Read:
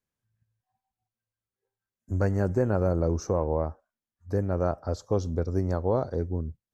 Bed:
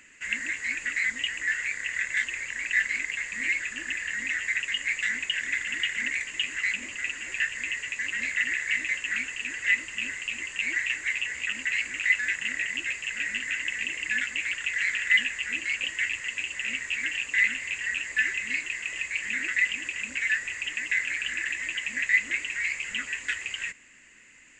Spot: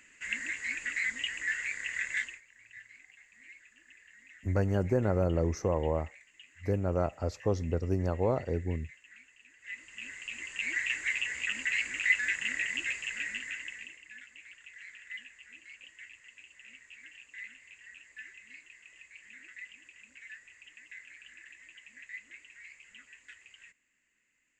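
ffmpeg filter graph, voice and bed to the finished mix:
-filter_complex "[0:a]adelay=2350,volume=-3dB[a];[1:a]volume=18dB,afade=t=out:st=2.16:d=0.25:silence=0.0891251,afade=t=in:st=9.59:d=1.4:silence=0.0707946,afade=t=out:st=12.88:d=1.14:silence=0.112202[b];[a][b]amix=inputs=2:normalize=0"

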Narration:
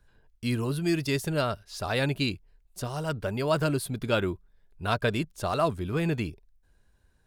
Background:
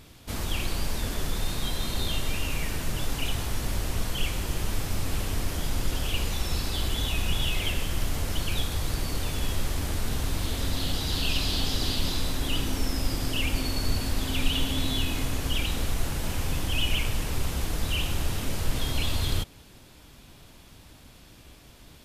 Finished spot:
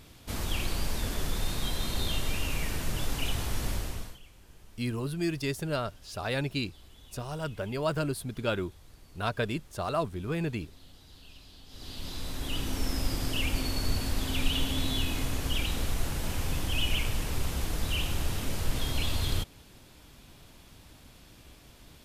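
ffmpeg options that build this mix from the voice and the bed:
-filter_complex "[0:a]adelay=4350,volume=-4dB[a];[1:a]volume=21dB,afade=t=out:st=3.68:d=0.51:silence=0.0668344,afade=t=in:st=11.67:d=1.24:silence=0.0707946[b];[a][b]amix=inputs=2:normalize=0"

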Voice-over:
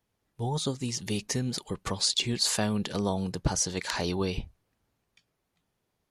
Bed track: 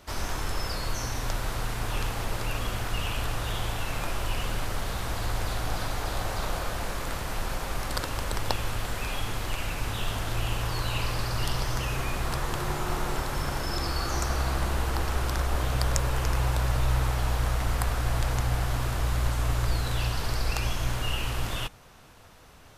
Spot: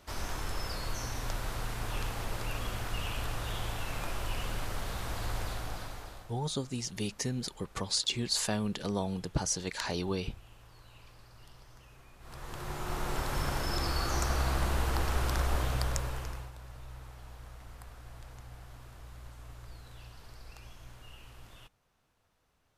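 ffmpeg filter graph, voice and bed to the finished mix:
-filter_complex "[0:a]adelay=5900,volume=-4dB[a];[1:a]volume=18.5dB,afade=t=out:st=5.37:d=0.96:silence=0.0891251,afade=t=in:st=12.19:d=1.17:silence=0.0630957,afade=t=out:st=15.5:d=1.01:silence=0.105925[b];[a][b]amix=inputs=2:normalize=0"

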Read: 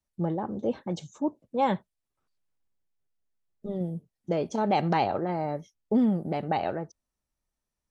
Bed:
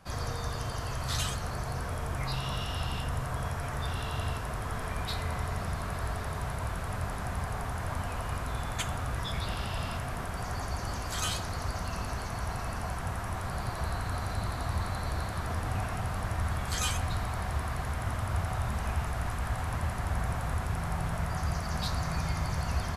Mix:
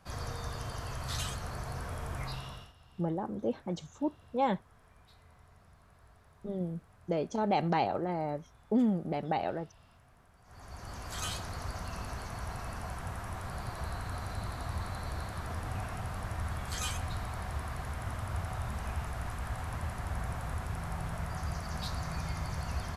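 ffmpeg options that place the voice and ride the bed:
-filter_complex "[0:a]adelay=2800,volume=-4dB[a];[1:a]volume=17dB,afade=t=out:st=2.21:d=0.52:silence=0.0794328,afade=t=in:st=10.44:d=0.78:silence=0.0841395[b];[a][b]amix=inputs=2:normalize=0"

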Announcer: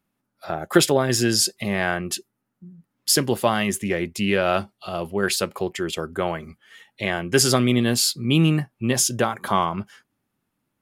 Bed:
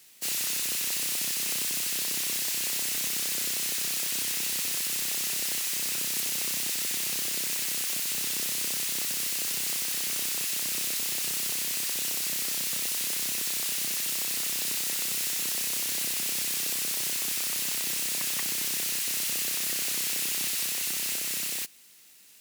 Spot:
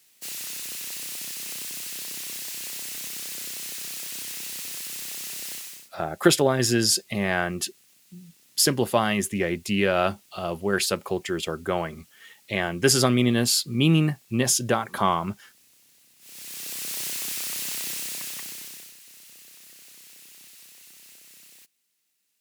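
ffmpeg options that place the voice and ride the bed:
-filter_complex "[0:a]adelay=5500,volume=-1.5dB[a];[1:a]volume=23dB,afade=t=out:st=5.52:d=0.37:silence=0.0630957,afade=t=in:st=16.19:d=0.8:silence=0.0398107,afade=t=out:st=17.84:d=1.11:silence=0.11885[b];[a][b]amix=inputs=2:normalize=0"

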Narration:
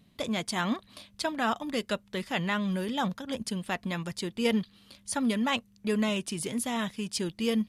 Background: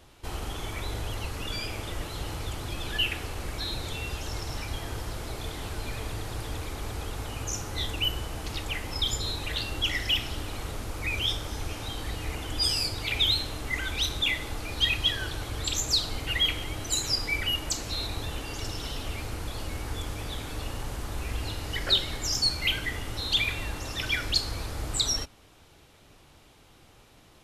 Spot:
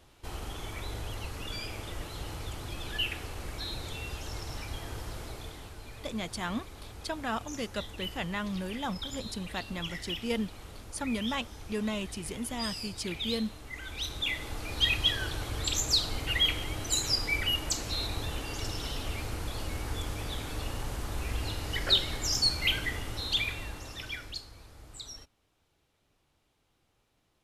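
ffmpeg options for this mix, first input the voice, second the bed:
-filter_complex "[0:a]adelay=5850,volume=-5dB[a];[1:a]volume=6dB,afade=t=out:st=5.19:d=0.55:silence=0.446684,afade=t=in:st=13.74:d=1.18:silence=0.298538,afade=t=out:st=22.81:d=1.68:silence=0.149624[b];[a][b]amix=inputs=2:normalize=0"

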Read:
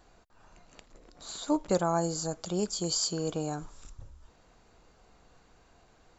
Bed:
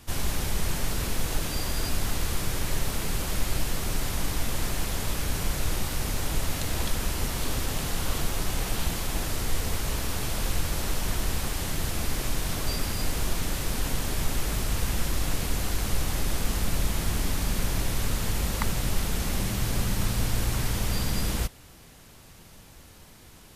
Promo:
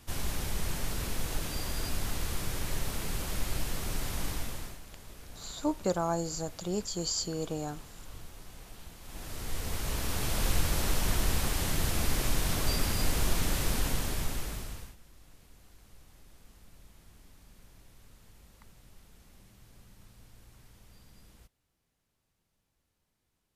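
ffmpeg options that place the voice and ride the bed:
-filter_complex "[0:a]adelay=4150,volume=-2.5dB[a];[1:a]volume=14.5dB,afade=t=out:st=4.29:d=0.51:silence=0.177828,afade=t=in:st=9:d=1.49:silence=0.1,afade=t=out:st=13.67:d=1.29:silence=0.0354813[b];[a][b]amix=inputs=2:normalize=0"

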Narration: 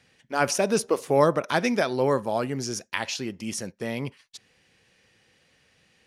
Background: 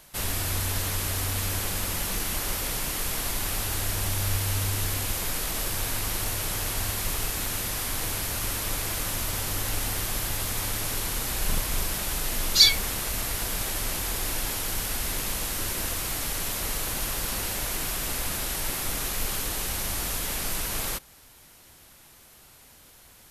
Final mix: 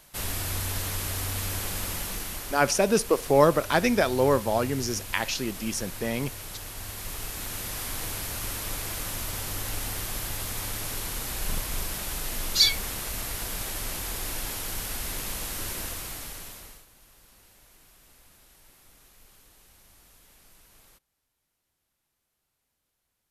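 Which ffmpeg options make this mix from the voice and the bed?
-filter_complex "[0:a]adelay=2200,volume=1dB[a];[1:a]volume=4dB,afade=t=out:st=1.89:d=0.74:silence=0.421697,afade=t=in:st=6.74:d=1.08:silence=0.473151,afade=t=out:st=15.72:d=1.14:silence=0.0668344[b];[a][b]amix=inputs=2:normalize=0"

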